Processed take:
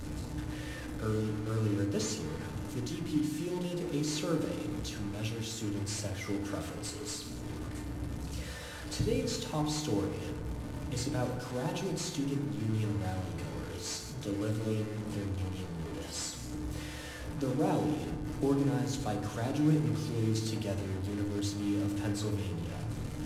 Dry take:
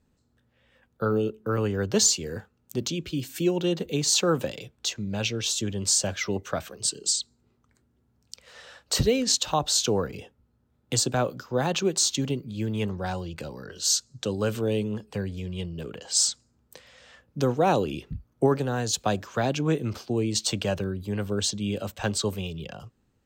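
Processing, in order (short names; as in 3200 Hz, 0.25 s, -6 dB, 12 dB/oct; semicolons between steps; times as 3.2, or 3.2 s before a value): delta modulation 64 kbps, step -26.5 dBFS; low shelf 350 Hz +8.5 dB; resonator 300 Hz, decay 0.51 s, harmonics all, mix 70%; FDN reverb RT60 1.4 s, low-frequency decay 1.5×, high-frequency decay 0.3×, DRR 2 dB; gain -5.5 dB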